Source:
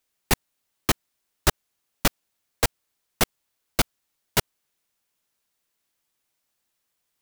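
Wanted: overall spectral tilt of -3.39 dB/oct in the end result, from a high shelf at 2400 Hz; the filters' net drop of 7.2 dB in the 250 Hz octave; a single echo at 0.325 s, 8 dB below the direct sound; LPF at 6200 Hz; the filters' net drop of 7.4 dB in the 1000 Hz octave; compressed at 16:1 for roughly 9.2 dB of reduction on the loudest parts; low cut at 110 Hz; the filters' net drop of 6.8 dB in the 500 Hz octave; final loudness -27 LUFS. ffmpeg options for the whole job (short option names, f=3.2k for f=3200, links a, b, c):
-af "highpass=110,lowpass=6.2k,equalizer=f=250:t=o:g=-8,equalizer=f=500:t=o:g=-4,equalizer=f=1k:t=o:g=-6.5,highshelf=f=2.4k:g=-8,acompressor=threshold=-31dB:ratio=16,aecho=1:1:325:0.398,volume=15dB"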